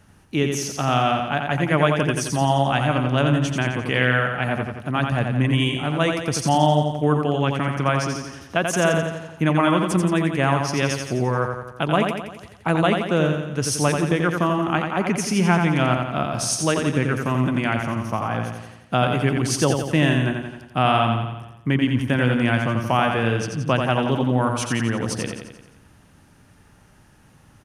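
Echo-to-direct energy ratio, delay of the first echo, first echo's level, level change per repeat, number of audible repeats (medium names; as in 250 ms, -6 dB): -3.5 dB, 87 ms, -5.0 dB, -5.0 dB, 6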